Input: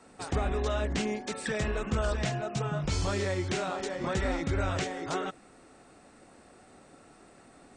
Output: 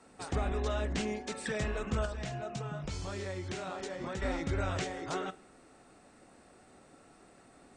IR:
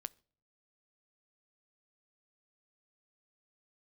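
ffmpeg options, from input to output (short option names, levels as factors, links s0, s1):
-filter_complex "[0:a]asettb=1/sr,asplit=3[s0][s1][s2];[s0]atrim=end=2.054[s3];[s1]atrim=start=2.05:end=4.22,asetpts=PTS-STARTPTS,afade=t=in:d=0.004:c=qsin,afade=t=out:st=2.166:d=0.004:c=qsin,acompressor=threshold=0.0251:ratio=6[s4];[s2]atrim=start=4.216[s5];[s3][s4]acrossfade=d=0.004:c1=hsin:c2=qsin[s6];[s6][s5]acrossfade=d=0.004:c1=qsin:c2=hsin[s7];[1:a]atrim=start_sample=2205,asetrate=23373,aresample=44100[s8];[s7][s8]afir=irnorm=-1:irlink=0,volume=0.708"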